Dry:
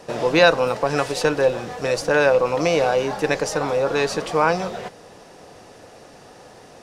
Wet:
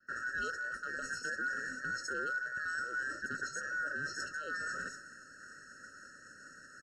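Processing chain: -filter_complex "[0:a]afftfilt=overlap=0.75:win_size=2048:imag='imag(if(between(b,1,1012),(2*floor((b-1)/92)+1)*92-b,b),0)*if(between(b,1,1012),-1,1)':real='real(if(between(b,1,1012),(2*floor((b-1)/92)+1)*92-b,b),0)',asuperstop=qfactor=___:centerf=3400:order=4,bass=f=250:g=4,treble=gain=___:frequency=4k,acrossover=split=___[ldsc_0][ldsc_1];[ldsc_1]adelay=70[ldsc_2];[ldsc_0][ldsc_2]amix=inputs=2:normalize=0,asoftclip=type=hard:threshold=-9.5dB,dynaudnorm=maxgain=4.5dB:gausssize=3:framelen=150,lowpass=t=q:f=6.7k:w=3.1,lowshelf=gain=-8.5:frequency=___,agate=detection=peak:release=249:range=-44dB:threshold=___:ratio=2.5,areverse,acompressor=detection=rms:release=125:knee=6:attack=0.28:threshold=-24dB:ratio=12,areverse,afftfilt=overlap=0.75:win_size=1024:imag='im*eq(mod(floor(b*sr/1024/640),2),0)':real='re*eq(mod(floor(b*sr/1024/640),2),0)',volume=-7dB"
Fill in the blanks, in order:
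1.4, 2, 4600, 98, -33dB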